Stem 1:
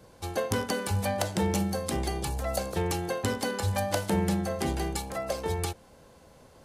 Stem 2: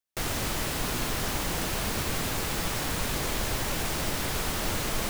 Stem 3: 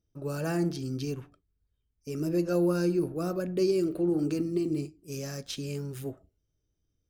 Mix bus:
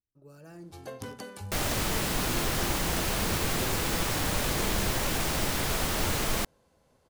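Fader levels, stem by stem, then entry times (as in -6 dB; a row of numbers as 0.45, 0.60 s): -12.0, +1.0, -18.5 dB; 0.50, 1.35, 0.00 s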